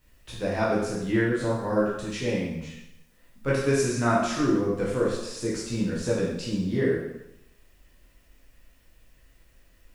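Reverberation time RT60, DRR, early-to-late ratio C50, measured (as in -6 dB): 0.85 s, -7.0 dB, 1.0 dB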